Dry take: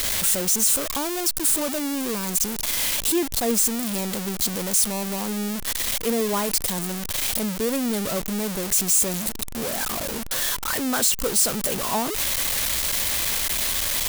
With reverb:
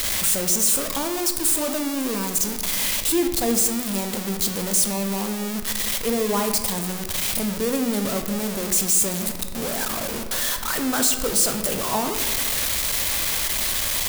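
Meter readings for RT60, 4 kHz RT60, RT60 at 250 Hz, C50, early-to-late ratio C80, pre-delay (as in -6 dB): 1.5 s, 0.85 s, 1.9 s, 7.5 dB, 9.5 dB, 14 ms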